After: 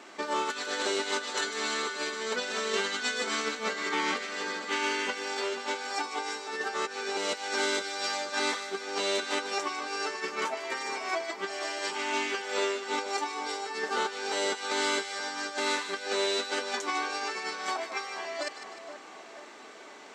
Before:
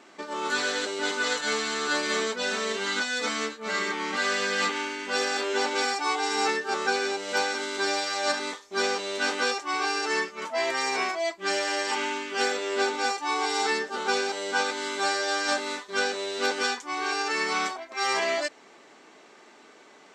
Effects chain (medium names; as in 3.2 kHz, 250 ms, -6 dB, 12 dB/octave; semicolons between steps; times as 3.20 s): high-pass 270 Hz 6 dB/octave; compressor with a negative ratio -32 dBFS, ratio -0.5; two-band feedback delay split 1.5 kHz, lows 482 ms, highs 151 ms, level -9.5 dB